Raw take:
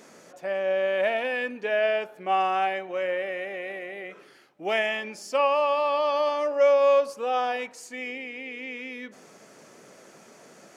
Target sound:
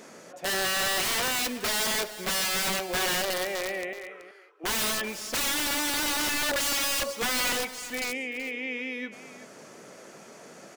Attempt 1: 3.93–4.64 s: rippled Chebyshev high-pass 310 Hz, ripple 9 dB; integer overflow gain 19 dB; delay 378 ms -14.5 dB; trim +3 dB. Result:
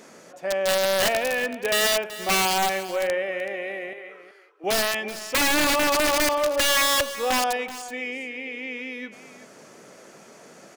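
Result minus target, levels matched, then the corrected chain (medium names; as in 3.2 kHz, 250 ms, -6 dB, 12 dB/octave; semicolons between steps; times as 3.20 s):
integer overflow: distortion -19 dB
3.93–4.64 s: rippled Chebyshev high-pass 310 Hz, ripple 9 dB; integer overflow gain 26 dB; delay 378 ms -14.5 dB; trim +3 dB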